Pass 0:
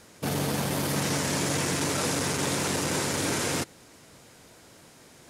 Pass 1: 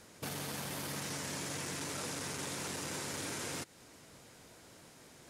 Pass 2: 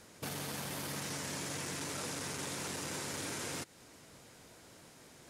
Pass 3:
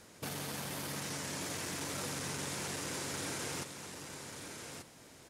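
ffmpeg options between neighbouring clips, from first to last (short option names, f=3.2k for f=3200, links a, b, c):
-filter_complex "[0:a]acrossover=split=980|5200[a][b][c];[a]acompressor=threshold=-39dB:ratio=4[d];[b]acompressor=threshold=-40dB:ratio=4[e];[c]acompressor=threshold=-40dB:ratio=4[f];[d][e][f]amix=inputs=3:normalize=0,volume=-4.5dB"
-af anull
-af "aecho=1:1:1186:0.447"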